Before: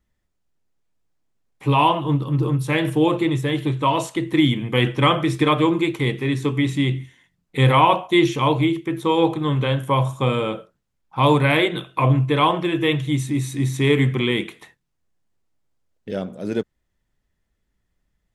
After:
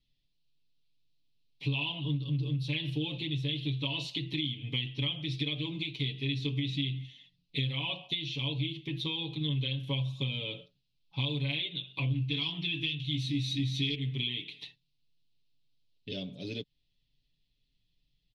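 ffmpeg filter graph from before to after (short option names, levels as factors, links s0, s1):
-filter_complex "[0:a]asettb=1/sr,asplit=3[s0][s1][s2];[s0]atrim=end=12.114[s3];[s1]atrim=start=12.11:end=13.95,asetpts=PTS-STARTPTS,afade=t=in:d=0.004:c=qsin,afade=t=out:st=1.836:d=0.004:c=qsin,equalizer=f=560:t=o:w=0.61:g=-14.5,acontrast=74,asplit=2[s4][s5];[s5]adelay=18,volume=0.501[s6];[s4][s6]amix=inputs=2:normalize=0,atrim=end_sample=81144[s7];[s2]atrim=start=13.946[s8];[s3][s7]acrossfade=d=0.004:c1=hsin:c2=qsin[s9];[s9][s8]acrossfade=d=0.004:c1=qsin:c2=hsin,firequalizer=gain_entry='entry(160,0);entry(400,-8);entry(1400,-22);entry(2600,8);entry(4100,14);entry(7500,-15)':delay=0.05:min_phase=1,acompressor=threshold=0.0447:ratio=10,aecho=1:1:7.1:0.82,volume=0.501"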